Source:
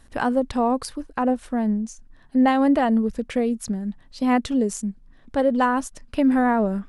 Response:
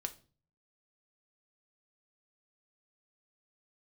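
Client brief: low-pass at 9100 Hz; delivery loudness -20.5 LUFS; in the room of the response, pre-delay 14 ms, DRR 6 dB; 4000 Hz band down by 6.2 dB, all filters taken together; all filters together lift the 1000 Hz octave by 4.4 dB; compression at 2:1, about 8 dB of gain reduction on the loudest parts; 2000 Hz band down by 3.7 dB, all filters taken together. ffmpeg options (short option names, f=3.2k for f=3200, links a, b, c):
-filter_complex "[0:a]lowpass=9.1k,equalizer=f=1k:t=o:g=7.5,equalizer=f=2k:t=o:g=-7.5,equalizer=f=4k:t=o:g=-6,acompressor=threshold=-28dB:ratio=2,asplit=2[a][b];[1:a]atrim=start_sample=2205,adelay=14[c];[b][c]afir=irnorm=-1:irlink=0,volume=-5dB[d];[a][d]amix=inputs=2:normalize=0,volume=6.5dB"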